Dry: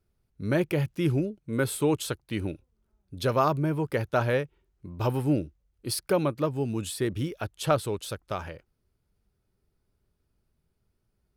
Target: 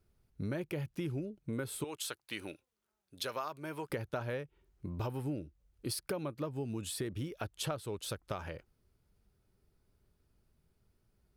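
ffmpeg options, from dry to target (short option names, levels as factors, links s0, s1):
-filter_complex "[0:a]asettb=1/sr,asplit=3[s0][s1][s2];[s0]atrim=end=1.844[s3];[s1]atrim=start=1.84:end=3.9,asetpts=PTS-STARTPTS,afade=t=in:d=0.004:c=qsin,afade=t=out:st=2.056:d=0.004:c=qsin,highpass=f=1300:p=1[s4];[s2]atrim=start=3.896[s5];[s3][s4]acrossfade=d=0.004:c1=hsin:c2=qsin[s6];[s6][s5]acrossfade=d=0.004:c1=qsin:c2=hsin,acompressor=threshold=0.0141:ratio=6,volume=1.19"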